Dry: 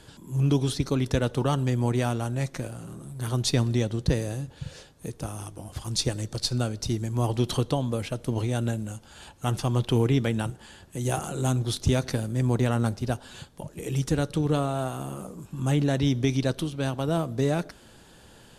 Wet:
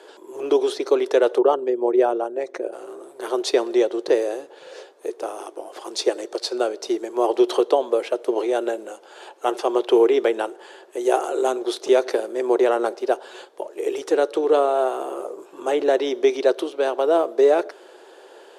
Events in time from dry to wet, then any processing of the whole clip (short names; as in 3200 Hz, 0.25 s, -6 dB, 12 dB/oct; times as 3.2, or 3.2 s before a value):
1.38–2.73 formant sharpening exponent 1.5
whole clip: Chebyshev high-pass 370 Hz, order 5; tilt -4 dB/oct; gain +9 dB